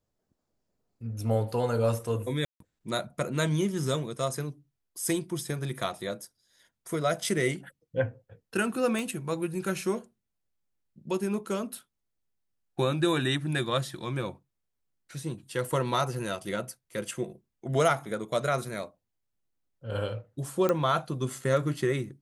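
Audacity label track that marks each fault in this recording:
2.450000	2.600000	dropout 153 ms
8.990000	8.990000	pop
20.690000	20.690000	pop -13 dBFS

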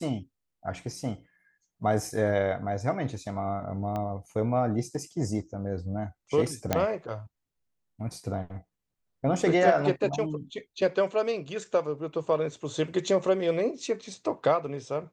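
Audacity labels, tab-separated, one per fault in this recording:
3.960000	3.960000	pop -21 dBFS
6.730000	6.730000	pop -9 dBFS

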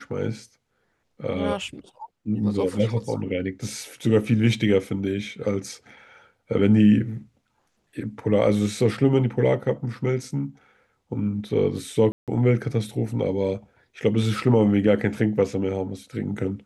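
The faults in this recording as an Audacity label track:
12.120000	12.280000	dropout 157 ms

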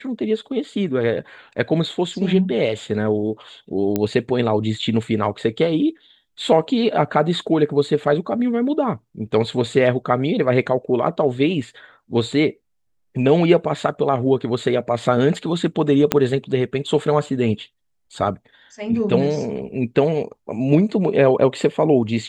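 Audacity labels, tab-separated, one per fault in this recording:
3.960000	3.960000	pop -7 dBFS
16.120000	16.120000	pop -1 dBFS

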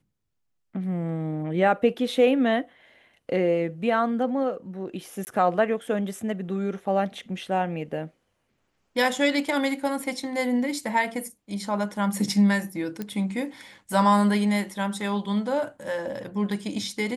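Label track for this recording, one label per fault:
5.250000	5.270000	dropout 19 ms
13.020000	13.020000	pop -18 dBFS

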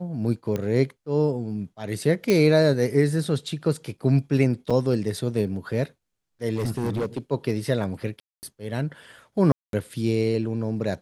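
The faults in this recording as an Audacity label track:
0.560000	0.560000	pop -15 dBFS
2.300000	2.300000	pop -8 dBFS
4.700000	4.710000	dropout 5.5 ms
6.550000	7.180000	clipped -22 dBFS
8.200000	8.430000	dropout 229 ms
9.520000	9.730000	dropout 212 ms

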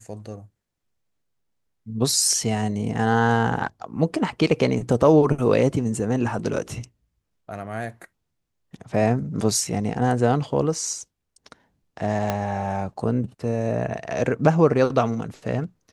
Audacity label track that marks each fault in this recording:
12.300000	12.300000	pop -9 dBFS

